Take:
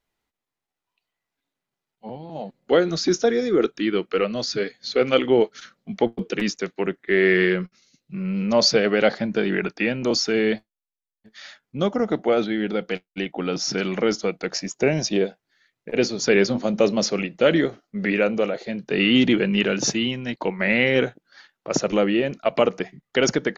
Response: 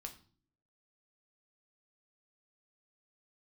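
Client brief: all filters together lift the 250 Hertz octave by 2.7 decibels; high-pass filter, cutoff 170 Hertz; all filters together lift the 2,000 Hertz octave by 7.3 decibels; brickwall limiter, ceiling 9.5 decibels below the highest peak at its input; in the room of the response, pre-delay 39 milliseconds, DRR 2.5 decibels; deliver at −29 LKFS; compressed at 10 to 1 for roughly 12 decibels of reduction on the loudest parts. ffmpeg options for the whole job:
-filter_complex "[0:a]highpass=170,equalizer=frequency=250:width_type=o:gain=4.5,equalizer=frequency=2000:width_type=o:gain=8.5,acompressor=threshold=-22dB:ratio=10,alimiter=limit=-17dB:level=0:latency=1,asplit=2[link_01][link_02];[1:a]atrim=start_sample=2205,adelay=39[link_03];[link_02][link_03]afir=irnorm=-1:irlink=0,volume=1.5dB[link_04];[link_01][link_04]amix=inputs=2:normalize=0,volume=-2dB"

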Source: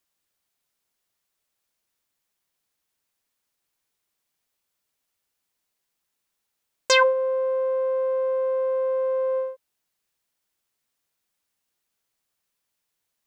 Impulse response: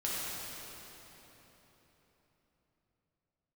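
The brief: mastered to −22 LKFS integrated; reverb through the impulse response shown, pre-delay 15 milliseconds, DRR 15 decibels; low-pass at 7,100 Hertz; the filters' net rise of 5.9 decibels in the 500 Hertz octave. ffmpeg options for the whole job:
-filter_complex "[0:a]lowpass=7100,equalizer=frequency=500:width_type=o:gain=6,asplit=2[link_01][link_02];[1:a]atrim=start_sample=2205,adelay=15[link_03];[link_02][link_03]afir=irnorm=-1:irlink=0,volume=-21dB[link_04];[link_01][link_04]amix=inputs=2:normalize=0,volume=-4dB"

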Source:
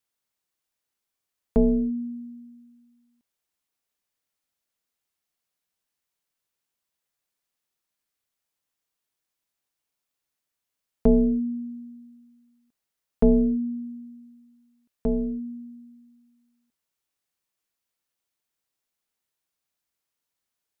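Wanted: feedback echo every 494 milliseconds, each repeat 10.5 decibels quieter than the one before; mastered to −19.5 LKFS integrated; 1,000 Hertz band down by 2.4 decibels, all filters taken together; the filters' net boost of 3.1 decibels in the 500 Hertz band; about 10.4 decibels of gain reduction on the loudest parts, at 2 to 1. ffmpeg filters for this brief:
ffmpeg -i in.wav -af "equalizer=frequency=500:width_type=o:gain=5,equalizer=frequency=1000:width_type=o:gain=-8,acompressor=threshold=-32dB:ratio=2,aecho=1:1:494|988|1482:0.299|0.0896|0.0269,volume=13.5dB" out.wav

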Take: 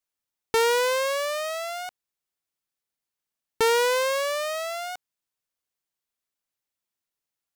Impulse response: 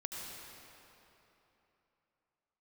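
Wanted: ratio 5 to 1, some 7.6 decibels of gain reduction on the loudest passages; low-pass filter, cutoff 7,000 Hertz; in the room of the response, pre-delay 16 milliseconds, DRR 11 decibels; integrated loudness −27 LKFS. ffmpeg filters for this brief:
-filter_complex "[0:a]lowpass=7000,acompressor=threshold=-27dB:ratio=5,asplit=2[link_01][link_02];[1:a]atrim=start_sample=2205,adelay=16[link_03];[link_02][link_03]afir=irnorm=-1:irlink=0,volume=-11.5dB[link_04];[link_01][link_04]amix=inputs=2:normalize=0,volume=3.5dB"

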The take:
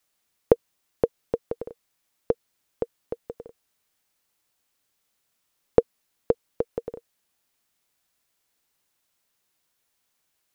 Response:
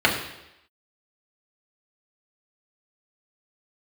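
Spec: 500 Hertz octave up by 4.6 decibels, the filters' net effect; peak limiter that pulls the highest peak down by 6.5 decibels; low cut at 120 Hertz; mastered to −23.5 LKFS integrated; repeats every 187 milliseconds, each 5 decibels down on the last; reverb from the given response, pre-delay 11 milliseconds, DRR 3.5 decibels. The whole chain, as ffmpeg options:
-filter_complex "[0:a]highpass=120,equalizer=frequency=500:width_type=o:gain=5,alimiter=limit=-4.5dB:level=0:latency=1,aecho=1:1:187|374|561|748|935|1122|1309:0.562|0.315|0.176|0.0988|0.0553|0.031|0.0173,asplit=2[link_01][link_02];[1:a]atrim=start_sample=2205,adelay=11[link_03];[link_02][link_03]afir=irnorm=-1:irlink=0,volume=-23dB[link_04];[link_01][link_04]amix=inputs=2:normalize=0,volume=3dB"

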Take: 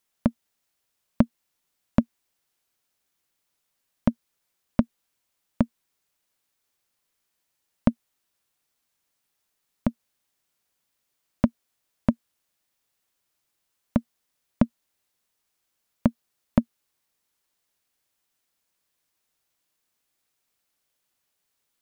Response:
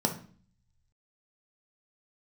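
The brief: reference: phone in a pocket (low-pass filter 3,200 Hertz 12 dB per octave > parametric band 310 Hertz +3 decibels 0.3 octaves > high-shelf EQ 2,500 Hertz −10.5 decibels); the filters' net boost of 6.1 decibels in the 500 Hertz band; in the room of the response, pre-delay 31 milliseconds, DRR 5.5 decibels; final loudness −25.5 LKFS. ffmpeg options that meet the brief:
-filter_complex "[0:a]equalizer=frequency=500:width_type=o:gain=8,asplit=2[link_01][link_02];[1:a]atrim=start_sample=2205,adelay=31[link_03];[link_02][link_03]afir=irnorm=-1:irlink=0,volume=-14dB[link_04];[link_01][link_04]amix=inputs=2:normalize=0,lowpass=3200,equalizer=frequency=310:width_type=o:width=0.3:gain=3,highshelf=frequency=2500:gain=-10.5,volume=-3.5dB"

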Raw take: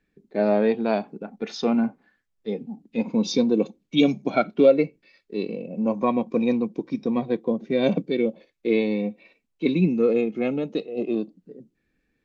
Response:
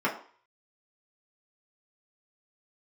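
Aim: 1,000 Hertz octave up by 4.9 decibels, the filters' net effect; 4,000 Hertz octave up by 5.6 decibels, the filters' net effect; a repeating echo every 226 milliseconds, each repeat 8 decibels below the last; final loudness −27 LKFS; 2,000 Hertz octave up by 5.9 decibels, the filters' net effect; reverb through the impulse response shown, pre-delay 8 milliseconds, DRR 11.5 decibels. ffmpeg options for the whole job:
-filter_complex "[0:a]equalizer=frequency=1000:width_type=o:gain=5.5,equalizer=frequency=2000:width_type=o:gain=4.5,equalizer=frequency=4000:width_type=o:gain=5,aecho=1:1:226|452|678|904|1130:0.398|0.159|0.0637|0.0255|0.0102,asplit=2[link_01][link_02];[1:a]atrim=start_sample=2205,adelay=8[link_03];[link_02][link_03]afir=irnorm=-1:irlink=0,volume=-23.5dB[link_04];[link_01][link_04]amix=inputs=2:normalize=0,volume=-5dB"

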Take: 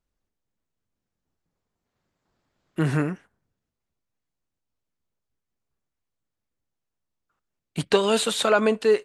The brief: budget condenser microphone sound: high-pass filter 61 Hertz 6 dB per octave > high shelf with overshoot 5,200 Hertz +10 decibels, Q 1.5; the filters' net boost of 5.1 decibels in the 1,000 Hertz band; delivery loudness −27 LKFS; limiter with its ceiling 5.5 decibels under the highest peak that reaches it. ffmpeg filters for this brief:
ffmpeg -i in.wav -af "equalizer=frequency=1000:width_type=o:gain=7,alimiter=limit=-9dB:level=0:latency=1,highpass=frequency=61:poles=1,highshelf=frequency=5200:width_type=q:width=1.5:gain=10,volume=-6dB" out.wav

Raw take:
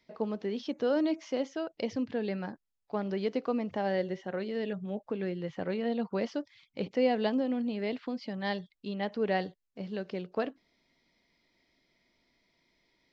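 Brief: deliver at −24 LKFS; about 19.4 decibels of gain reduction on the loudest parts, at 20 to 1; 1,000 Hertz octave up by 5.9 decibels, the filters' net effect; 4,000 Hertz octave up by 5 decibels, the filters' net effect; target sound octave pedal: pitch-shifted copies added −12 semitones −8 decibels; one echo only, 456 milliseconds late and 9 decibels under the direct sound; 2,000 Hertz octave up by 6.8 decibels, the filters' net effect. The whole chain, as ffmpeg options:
ffmpeg -i in.wav -filter_complex "[0:a]equalizer=frequency=1000:width_type=o:gain=7.5,equalizer=frequency=2000:width_type=o:gain=5,equalizer=frequency=4000:width_type=o:gain=4,acompressor=threshold=-39dB:ratio=20,aecho=1:1:456:0.355,asplit=2[link_01][link_02];[link_02]asetrate=22050,aresample=44100,atempo=2,volume=-8dB[link_03];[link_01][link_03]amix=inputs=2:normalize=0,volume=20dB" out.wav

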